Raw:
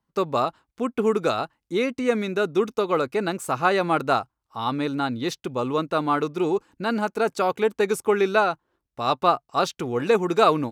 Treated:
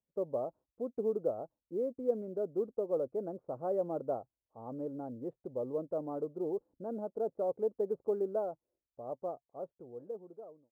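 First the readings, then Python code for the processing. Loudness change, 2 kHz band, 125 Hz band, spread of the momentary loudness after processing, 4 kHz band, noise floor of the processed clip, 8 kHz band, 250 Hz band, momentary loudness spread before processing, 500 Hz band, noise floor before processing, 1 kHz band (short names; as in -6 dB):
-13.5 dB, under -40 dB, -17.0 dB, 12 LU, under -40 dB, under -85 dBFS, under -35 dB, -15.0 dB, 8 LU, -11.0 dB, -83 dBFS, -22.0 dB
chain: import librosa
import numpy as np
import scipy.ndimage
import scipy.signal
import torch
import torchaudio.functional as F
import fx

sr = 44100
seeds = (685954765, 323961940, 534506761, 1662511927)

y = fx.fade_out_tail(x, sr, length_s=2.55)
y = fx.ladder_lowpass(y, sr, hz=640.0, resonance_pct=60)
y = fx.quant_float(y, sr, bits=6)
y = y * librosa.db_to_amplitude(-6.0)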